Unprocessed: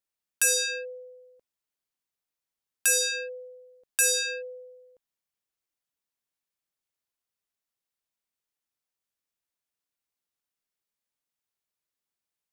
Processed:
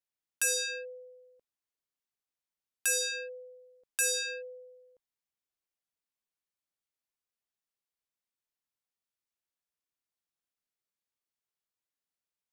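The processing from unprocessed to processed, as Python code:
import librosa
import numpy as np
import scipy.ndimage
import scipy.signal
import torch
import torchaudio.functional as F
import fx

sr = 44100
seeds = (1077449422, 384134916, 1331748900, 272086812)

y = fx.high_shelf(x, sr, hz=8700.0, db=-3.0)
y = F.gain(torch.from_numpy(y), -5.0).numpy()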